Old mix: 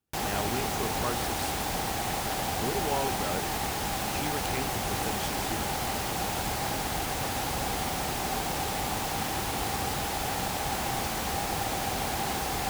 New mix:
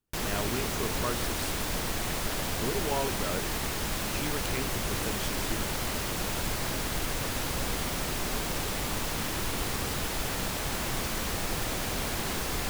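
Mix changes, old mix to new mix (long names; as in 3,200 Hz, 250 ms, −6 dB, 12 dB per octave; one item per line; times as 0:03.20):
background: add parametric band 790 Hz −13 dB 0.26 octaves
master: remove high-pass filter 47 Hz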